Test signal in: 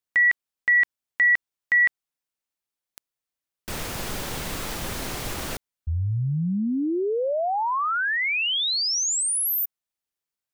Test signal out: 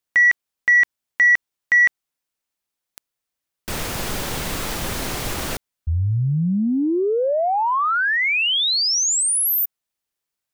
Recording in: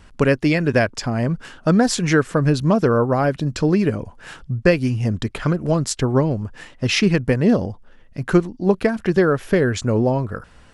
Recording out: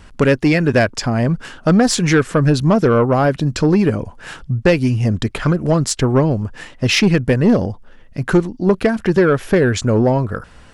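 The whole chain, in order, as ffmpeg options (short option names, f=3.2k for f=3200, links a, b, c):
-af "asoftclip=type=tanh:threshold=-10dB,volume=5dB"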